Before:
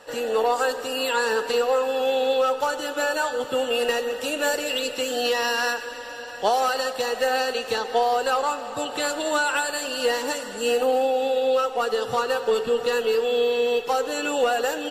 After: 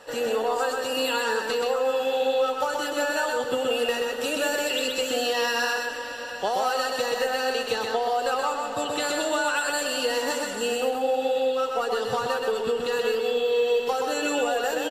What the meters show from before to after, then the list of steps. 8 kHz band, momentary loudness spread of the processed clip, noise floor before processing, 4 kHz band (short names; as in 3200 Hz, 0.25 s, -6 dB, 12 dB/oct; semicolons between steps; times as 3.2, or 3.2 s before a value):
-0.5 dB, 3 LU, -35 dBFS, -1.0 dB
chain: compressor, threshold -23 dBFS, peak gain reduction 7 dB; on a send: echo 0.127 s -3 dB